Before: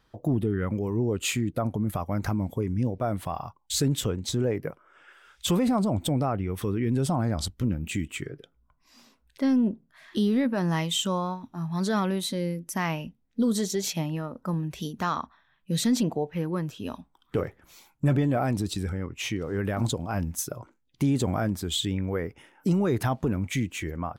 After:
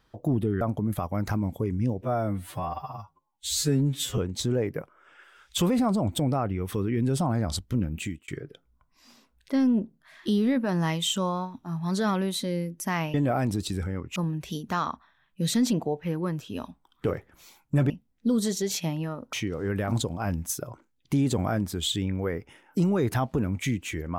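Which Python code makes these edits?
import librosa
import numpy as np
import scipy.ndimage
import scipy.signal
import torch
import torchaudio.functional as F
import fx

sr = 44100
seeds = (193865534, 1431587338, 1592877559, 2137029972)

y = fx.edit(x, sr, fx.cut(start_s=0.61, length_s=0.97),
    fx.stretch_span(start_s=2.99, length_s=1.08, factor=2.0),
    fx.fade_out_span(start_s=7.87, length_s=0.3),
    fx.swap(start_s=13.03, length_s=1.43, other_s=18.2, other_length_s=1.02), tone=tone)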